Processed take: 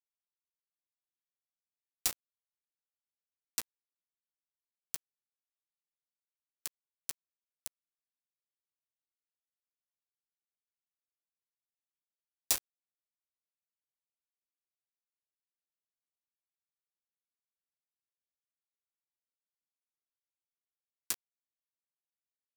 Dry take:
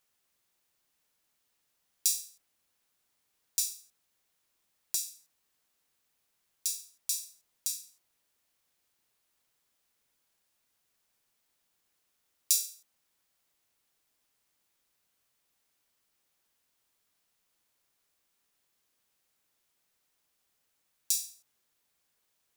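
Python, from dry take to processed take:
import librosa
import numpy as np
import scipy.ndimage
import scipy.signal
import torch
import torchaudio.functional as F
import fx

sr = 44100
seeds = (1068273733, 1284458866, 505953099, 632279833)

y = fx.wiener(x, sr, points=41)
y = np.where(np.abs(y) >= 10.0 ** (-18.5 / 20.0), y, 0.0)
y = y * librosa.db_to_amplitude(-1.5)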